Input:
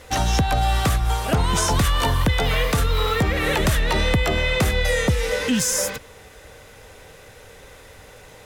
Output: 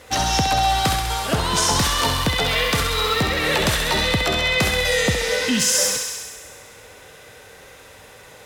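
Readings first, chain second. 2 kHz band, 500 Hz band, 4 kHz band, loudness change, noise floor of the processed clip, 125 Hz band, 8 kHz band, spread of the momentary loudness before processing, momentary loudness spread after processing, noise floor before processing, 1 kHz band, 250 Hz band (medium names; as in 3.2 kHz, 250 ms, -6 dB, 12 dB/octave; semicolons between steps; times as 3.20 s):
+3.0 dB, +0.5 dB, +6.0 dB, +2.0 dB, -45 dBFS, -4.0 dB, +4.5 dB, 2 LU, 5 LU, -46 dBFS, +3.0 dB, -0.5 dB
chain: high-pass 110 Hz 6 dB/octave; on a send: thinning echo 66 ms, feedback 78%, high-pass 520 Hz, level -5 dB; on the sum: dynamic bell 4.6 kHz, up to +6 dB, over -40 dBFS, Q 1.5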